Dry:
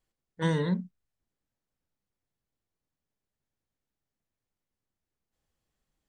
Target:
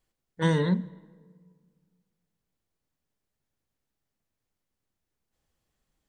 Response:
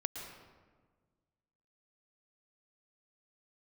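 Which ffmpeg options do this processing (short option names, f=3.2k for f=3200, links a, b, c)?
-filter_complex "[0:a]asplit=2[a][b];[1:a]atrim=start_sample=2205,asetrate=37044,aresample=44100[c];[b][c]afir=irnorm=-1:irlink=0,volume=-20dB[d];[a][d]amix=inputs=2:normalize=0,volume=2.5dB"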